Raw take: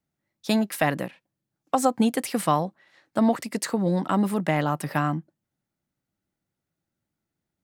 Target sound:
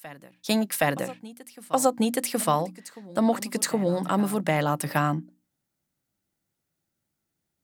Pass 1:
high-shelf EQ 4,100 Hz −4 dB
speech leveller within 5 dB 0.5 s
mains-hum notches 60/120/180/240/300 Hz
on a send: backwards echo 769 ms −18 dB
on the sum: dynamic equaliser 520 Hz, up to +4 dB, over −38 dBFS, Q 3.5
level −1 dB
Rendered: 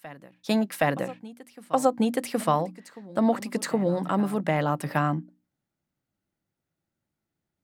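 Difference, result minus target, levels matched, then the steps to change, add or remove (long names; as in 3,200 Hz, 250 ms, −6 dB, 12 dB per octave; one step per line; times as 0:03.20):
8,000 Hz band −8.0 dB
change: high-shelf EQ 4,100 Hz +7.5 dB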